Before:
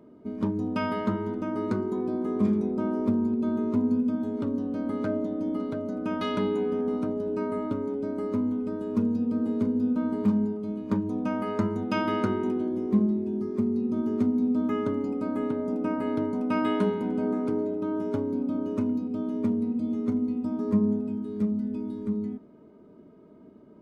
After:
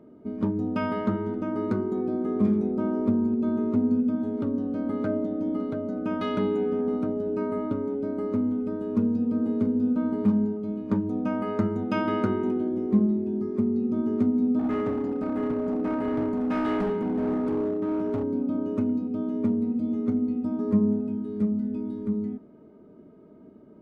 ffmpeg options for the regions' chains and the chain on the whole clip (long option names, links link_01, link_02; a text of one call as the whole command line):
ffmpeg -i in.wav -filter_complex "[0:a]asettb=1/sr,asplit=3[link_01][link_02][link_03];[link_01]atrim=end=14.594[link_04];[link_02]atrim=start=14.59:end=18.24,asetpts=PTS-STARTPTS,afade=type=in:duration=0.004:curve=qsin,afade=type=out:start_time=3.646:duration=0.004:curve=qsin,highpass=frequency=59:width=0.5412,highpass=frequency=59:width=1.3066,volume=25dB,asoftclip=hard,volume=-25dB,asplit=2[link_05][link_06];[link_06]adelay=48,volume=-13.5dB[link_07];[link_05][link_07]amix=inputs=2:normalize=0,atrim=end_sample=160965[link_08];[link_03]atrim=start=18.236[link_09];[link_04][link_08]acrossfade=duration=0.004:curve1=hsin:curve2=qsin[link_10];[link_10][link_09]acrossfade=duration=0.004:curve1=qsin:curve2=hsin,highshelf=frequency=3200:gain=-9.5,bandreject=frequency=1000:width=12,volume=1.5dB" out.wav